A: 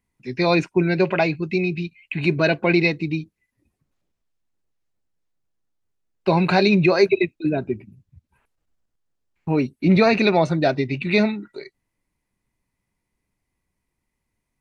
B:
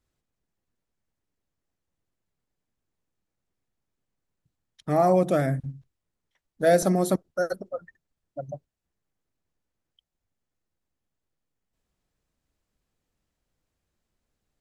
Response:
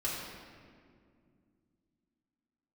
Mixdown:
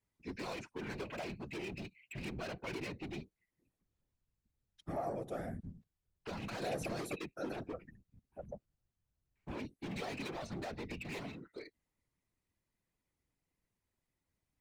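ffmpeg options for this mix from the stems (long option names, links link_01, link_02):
-filter_complex "[0:a]acrossover=split=130|810|2200[link_01][link_02][link_03][link_04];[link_01]acompressor=threshold=-42dB:ratio=4[link_05];[link_02]acompressor=threshold=-24dB:ratio=4[link_06];[link_03]acompressor=threshold=-34dB:ratio=4[link_07];[link_04]acompressor=threshold=-33dB:ratio=4[link_08];[link_05][link_06][link_07][link_08]amix=inputs=4:normalize=0,asoftclip=type=hard:threshold=-28dB,volume=-5.5dB[link_09];[1:a]acompressor=threshold=-31dB:ratio=2,volume=-4.5dB[link_10];[link_09][link_10]amix=inputs=2:normalize=0,adynamicequalizer=threshold=0.00224:dfrequency=200:dqfactor=3.6:tfrequency=200:tqfactor=3.6:attack=5:release=100:ratio=0.375:range=3:mode=cutabove:tftype=bell,asoftclip=type=tanh:threshold=-23dB,afftfilt=real='hypot(re,im)*cos(2*PI*random(0))':imag='hypot(re,im)*sin(2*PI*random(1))':win_size=512:overlap=0.75"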